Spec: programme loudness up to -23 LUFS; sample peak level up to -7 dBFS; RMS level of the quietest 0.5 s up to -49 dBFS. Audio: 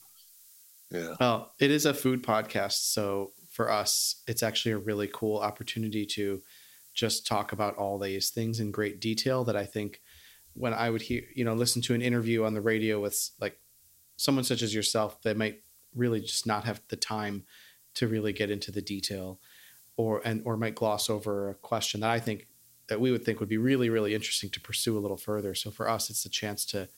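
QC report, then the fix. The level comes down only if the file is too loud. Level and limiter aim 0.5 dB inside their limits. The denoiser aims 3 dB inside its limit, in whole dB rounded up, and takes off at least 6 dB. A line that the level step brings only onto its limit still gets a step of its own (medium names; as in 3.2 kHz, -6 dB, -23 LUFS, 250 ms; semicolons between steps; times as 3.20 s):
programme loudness -30.0 LUFS: pass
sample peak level -10.5 dBFS: pass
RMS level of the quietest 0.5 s -61 dBFS: pass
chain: none needed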